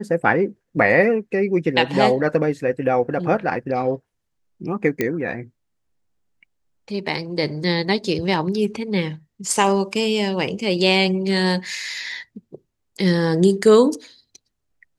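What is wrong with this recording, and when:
0:05.01: click −7 dBFS

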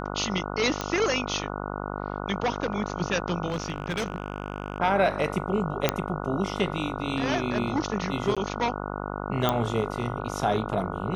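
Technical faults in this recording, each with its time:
mains buzz 50 Hz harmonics 29 −33 dBFS
0:00.81: click −13 dBFS
0:03.47–0:04.80: clipping −23 dBFS
0:05.89: click −5 dBFS
0:08.35–0:08.37: drop-out 16 ms
0:09.49: click −9 dBFS

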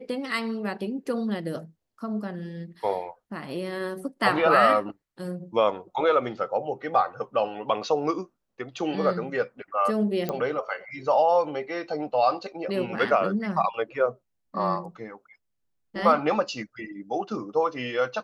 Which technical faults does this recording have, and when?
0:10.29: click −15 dBFS

